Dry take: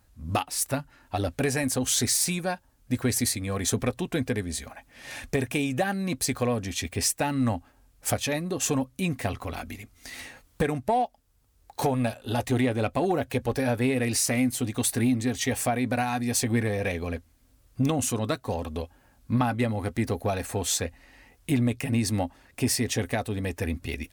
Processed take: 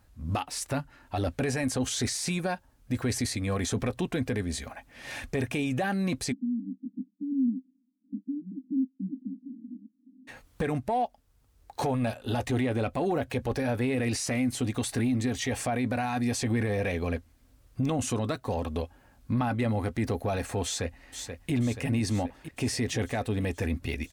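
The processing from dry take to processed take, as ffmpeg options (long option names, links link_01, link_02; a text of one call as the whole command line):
ffmpeg -i in.wav -filter_complex "[0:a]asplit=3[link_01][link_02][link_03];[link_01]afade=type=out:start_time=6.31:duration=0.02[link_04];[link_02]asuperpass=centerf=240:order=12:qfactor=2.2,afade=type=in:start_time=6.31:duration=0.02,afade=type=out:start_time=10.27:duration=0.02[link_05];[link_03]afade=type=in:start_time=10.27:duration=0.02[link_06];[link_04][link_05][link_06]amix=inputs=3:normalize=0,asplit=2[link_07][link_08];[link_08]afade=type=in:start_time=20.64:duration=0.01,afade=type=out:start_time=21.52:duration=0.01,aecho=0:1:480|960|1440|1920|2400|2880|3360|3840:0.298538|0.19405|0.126132|0.0819861|0.0532909|0.0346391|0.0225154|0.014635[link_09];[link_07][link_09]amix=inputs=2:normalize=0,acrossover=split=9800[link_10][link_11];[link_11]acompressor=threshold=-48dB:ratio=4:attack=1:release=60[link_12];[link_10][link_12]amix=inputs=2:normalize=0,alimiter=limit=-22dB:level=0:latency=1:release=15,highshelf=frequency=5000:gain=-5.5,volume=1.5dB" out.wav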